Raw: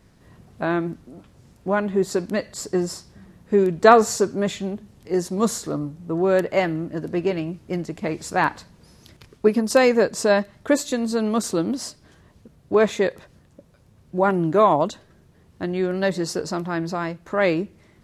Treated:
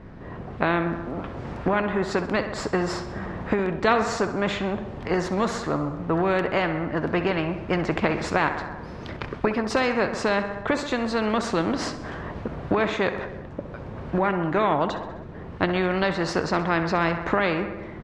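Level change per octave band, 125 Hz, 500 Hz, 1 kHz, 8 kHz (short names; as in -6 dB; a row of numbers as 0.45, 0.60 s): +0.5, -4.5, -1.5, -9.0 dB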